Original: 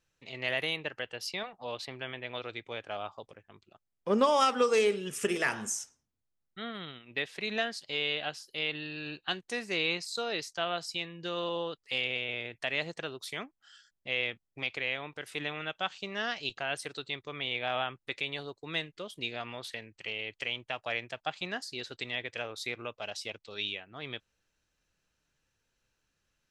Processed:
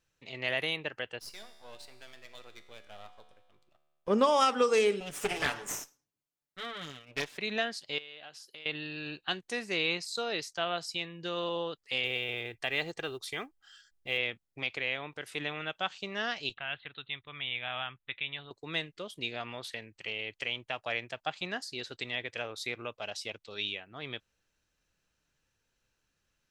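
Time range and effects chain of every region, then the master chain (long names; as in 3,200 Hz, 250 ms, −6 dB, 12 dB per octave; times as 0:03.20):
0:01.19–0:04.08: gain on one half-wave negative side −12 dB + high-shelf EQ 4,600 Hz +8 dB + tuned comb filter 73 Hz, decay 1.4 s, mix 70%
0:05.00–0:07.38: lower of the sound and its delayed copy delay 6.9 ms + low-shelf EQ 100 Hz −10.5 dB + highs frequency-modulated by the lows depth 0.19 ms
0:07.98–0:08.66: high-pass filter 61 Hz + low-shelf EQ 220 Hz −7.5 dB + downward compressor, threshold −44 dBFS
0:12.04–0:14.18: low-shelf EQ 72 Hz +9 dB + comb filter 2.5 ms, depth 39% + floating-point word with a short mantissa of 4 bits
0:16.54–0:18.51: Butterworth low-pass 3,800 Hz 96 dB per octave + parametric band 410 Hz −13 dB 2.1 octaves
whole clip: no processing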